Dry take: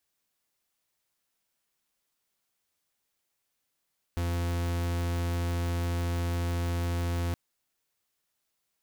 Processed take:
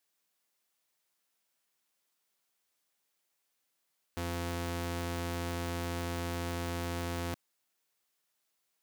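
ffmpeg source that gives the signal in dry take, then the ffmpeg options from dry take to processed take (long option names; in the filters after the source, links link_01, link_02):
-f lavfi -i "aevalsrc='0.0335*(2*lt(mod(86*t,1),0.43)-1)':duration=3.17:sample_rate=44100"
-af "highpass=frequency=240:poles=1"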